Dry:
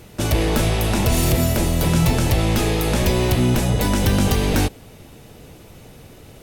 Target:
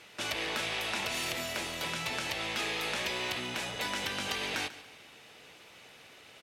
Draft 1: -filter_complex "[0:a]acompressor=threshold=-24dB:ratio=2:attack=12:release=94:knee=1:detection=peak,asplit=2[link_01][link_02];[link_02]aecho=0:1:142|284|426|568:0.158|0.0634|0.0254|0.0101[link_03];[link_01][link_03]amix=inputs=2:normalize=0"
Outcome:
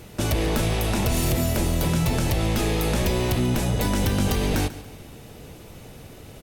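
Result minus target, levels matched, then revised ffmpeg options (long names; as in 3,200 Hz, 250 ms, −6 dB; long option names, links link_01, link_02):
2,000 Hz band −8.5 dB
-filter_complex "[0:a]acompressor=threshold=-24dB:ratio=2:attack=12:release=94:knee=1:detection=peak,bandpass=frequency=2500:width_type=q:width=0.87:csg=0,asplit=2[link_01][link_02];[link_02]aecho=0:1:142|284|426|568:0.158|0.0634|0.0254|0.0101[link_03];[link_01][link_03]amix=inputs=2:normalize=0"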